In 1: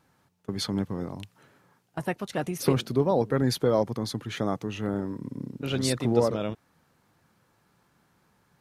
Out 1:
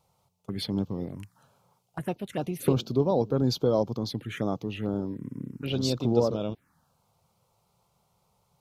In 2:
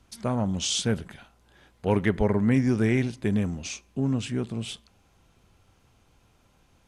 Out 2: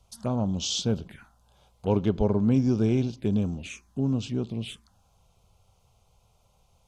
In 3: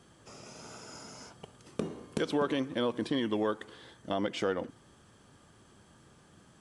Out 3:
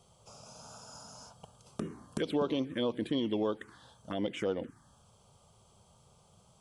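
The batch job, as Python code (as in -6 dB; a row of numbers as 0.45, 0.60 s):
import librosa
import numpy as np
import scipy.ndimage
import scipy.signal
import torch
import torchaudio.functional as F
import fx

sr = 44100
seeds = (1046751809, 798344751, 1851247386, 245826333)

y = fx.env_phaser(x, sr, low_hz=280.0, high_hz=1900.0, full_db=-25.5)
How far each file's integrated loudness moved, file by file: -1.0, -0.5, -1.0 LU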